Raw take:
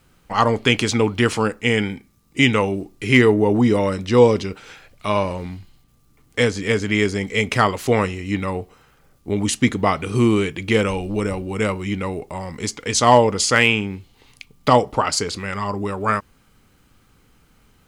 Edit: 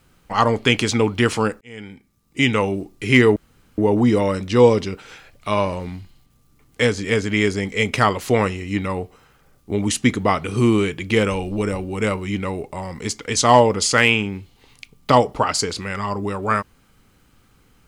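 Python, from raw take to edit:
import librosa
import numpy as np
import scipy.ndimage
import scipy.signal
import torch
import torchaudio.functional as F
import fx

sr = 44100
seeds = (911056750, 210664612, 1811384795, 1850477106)

y = fx.edit(x, sr, fx.fade_in_span(start_s=1.61, length_s=1.07),
    fx.insert_room_tone(at_s=3.36, length_s=0.42), tone=tone)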